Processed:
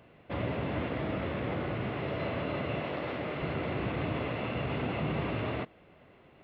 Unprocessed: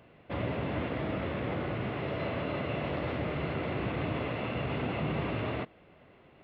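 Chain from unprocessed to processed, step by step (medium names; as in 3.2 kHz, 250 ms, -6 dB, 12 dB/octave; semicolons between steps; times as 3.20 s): 2.81–3.42 s: high-pass 230 Hz 6 dB/octave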